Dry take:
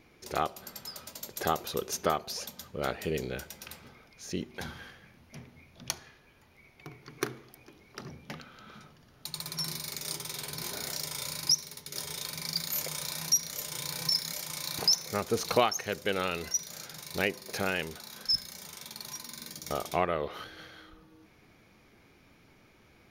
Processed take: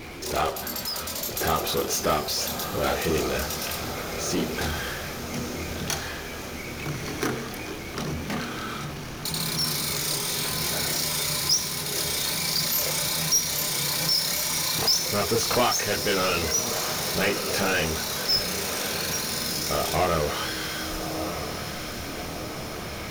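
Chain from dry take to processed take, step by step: chorus voices 4, 0.49 Hz, delay 27 ms, depth 2.2 ms; power-law curve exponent 0.5; diffused feedback echo 1.255 s, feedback 63%, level -8 dB; gain +1 dB

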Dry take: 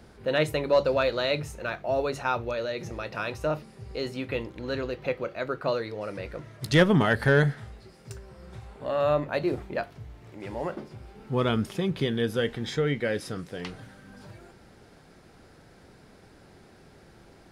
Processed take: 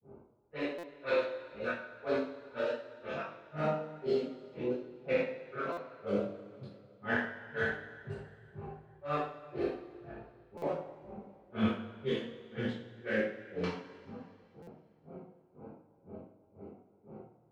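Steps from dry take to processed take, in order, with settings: Wiener smoothing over 25 samples; HPF 140 Hz 12 dB/oct; high shelf 6000 Hz -8 dB; on a send: thinning echo 60 ms, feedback 58%, high-pass 260 Hz, level -4.5 dB; on the sum: dynamic EQ 1700 Hz, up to +5 dB, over -43 dBFS, Q 2.1; reverse; compressor 20:1, threshold -33 dBFS, peak gain reduction 21 dB; reverse; flange 1.1 Hz, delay 6.1 ms, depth 7.2 ms, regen +47%; grains 0.252 s, grains 2/s, spray 15 ms, pitch spread up and down by 0 st; chorus voices 4, 0.24 Hz, delay 22 ms, depth 2.8 ms; low-pass opened by the level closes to 910 Hz, open at -47.5 dBFS; two-slope reverb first 0.42 s, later 2.6 s, from -18 dB, DRR -9 dB; stuck buffer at 0.78/5.72/10.57/14.62, samples 256, times 8; gain +6.5 dB

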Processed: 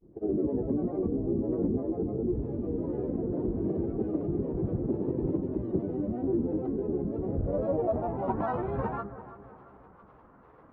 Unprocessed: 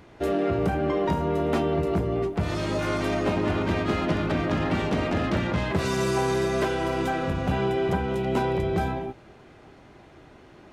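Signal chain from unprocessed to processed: grains, pitch spread up and down by 12 st; on a send: analogue delay 0.336 s, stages 4096, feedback 45%, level -14 dB; on the sum: low-pass sweep 360 Hz -> 1200 Hz, 7.09–8.61; gain -6.5 dB; Vorbis 64 kbps 44100 Hz

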